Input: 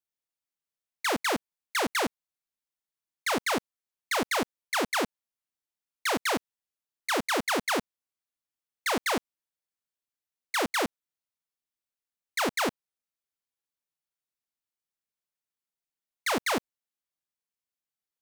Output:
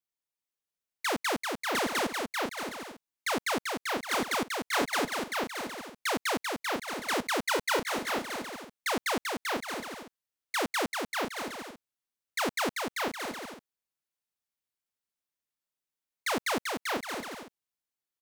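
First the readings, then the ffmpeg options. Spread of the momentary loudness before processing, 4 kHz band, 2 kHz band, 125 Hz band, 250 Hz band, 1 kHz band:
6 LU, −0.5 dB, 0.0 dB, −0.5 dB, −0.5 dB, 0.0 dB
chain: -af "aecho=1:1:390|624|764.4|848.6|899.2:0.631|0.398|0.251|0.158|0.1,volume=-2.5dB"

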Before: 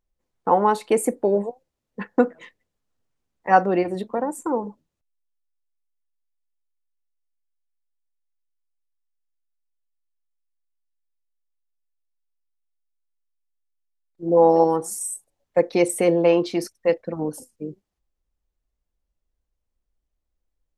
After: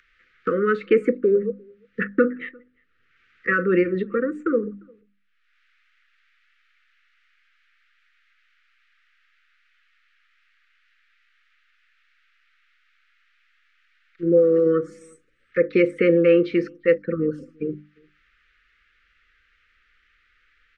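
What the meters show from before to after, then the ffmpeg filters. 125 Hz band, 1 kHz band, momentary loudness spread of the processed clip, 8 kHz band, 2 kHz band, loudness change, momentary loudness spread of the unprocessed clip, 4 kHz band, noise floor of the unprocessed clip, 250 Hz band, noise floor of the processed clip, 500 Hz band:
+1.5 dB, −12.5 dB, 14 LU, below −25 dB, +5.5 dB, 0.0 dB, 18 LU, can't be measured, −81 dBFS, +2.0 dB, −65 dBFS, +1.0 dB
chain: -filter_complex "[0:a]lowpass=frequency=1900:width=0.5412,lowpass=frequency=1900:width=1.3066,bandreject=frequency=50:width_type=h:width=6,bandreject=frequency=100:width_type=h:width=6,bandreject=frequency=150:width_type=h:width=6,bandreject=frequency=200:width_type=h:width=6,bandreject=frequency=250:width_type=h:width=6,bandreject=frequency=300:width_type=h:width=6,acrossover=split=260|1400[link_01][link_02][link_03];[link_03]acompressor=mode=upward:threshold=-56dB:ratio=2.5[link_04];[link_01][link_02][link_04]amix=inputs=3:normalize=0,alimiter=limit=-10dB:level=0:latency=1:release=25,asplit=2[link_05][link_06];[link_06]acompressor=threshold=-31dB:ratio=6,volume=2dB[link_07];[link_05][link_07]amix=inputs=2:normalize=0,crystalizer=i=9:c=0,asuperstop=centerf=790:order=20:qfactor=1.2,asplit=2[link_08][link_09];[link_09]adelay=349.9,volume=-30dB,highshelf=frequency=4000:gain=-7.87[link_10];[link_08][link_10]amix=inputs=2:normalize=0"

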